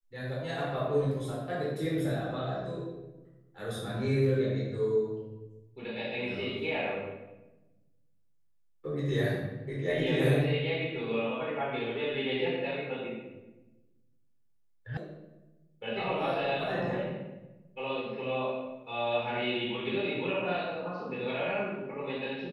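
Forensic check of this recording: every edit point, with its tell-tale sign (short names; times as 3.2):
14.97 sound cut off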